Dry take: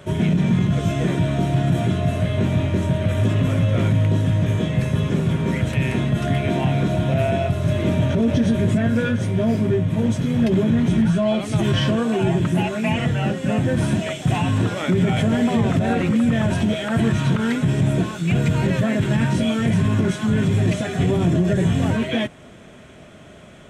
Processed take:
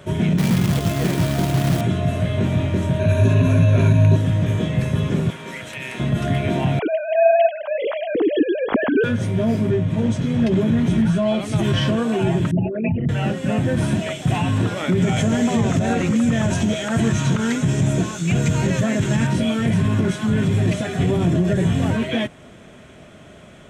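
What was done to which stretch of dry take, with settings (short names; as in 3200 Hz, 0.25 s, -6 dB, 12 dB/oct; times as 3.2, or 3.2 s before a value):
0.38–1.81 companded quantiser 4-bit
2.99–4.16 ripple EQ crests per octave 1.5, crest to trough 12 dB
5.3–6 HPF 1200 Hz 6 dB/oct
6.79–9.04 sine-wave speech
9.71–10.61 LPF 8600 Hz
12.51–13.09 formant sharpening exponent 3
15.02–19.27 bell 6600 Hz +11.5 dB 0.56 oct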